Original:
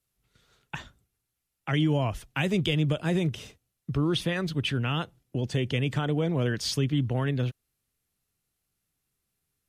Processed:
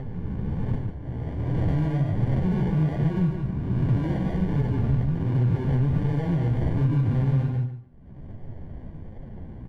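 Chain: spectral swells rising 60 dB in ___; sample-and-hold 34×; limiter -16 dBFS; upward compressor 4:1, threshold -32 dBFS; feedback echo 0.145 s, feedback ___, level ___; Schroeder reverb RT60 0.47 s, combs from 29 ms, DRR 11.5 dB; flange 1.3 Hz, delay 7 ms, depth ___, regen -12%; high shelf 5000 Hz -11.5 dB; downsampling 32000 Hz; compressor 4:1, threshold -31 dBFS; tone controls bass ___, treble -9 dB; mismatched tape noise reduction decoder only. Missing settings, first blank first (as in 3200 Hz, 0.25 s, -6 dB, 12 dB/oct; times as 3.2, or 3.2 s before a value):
1.39 s, 22%, -7 dB, 9.4 ms, +15 dB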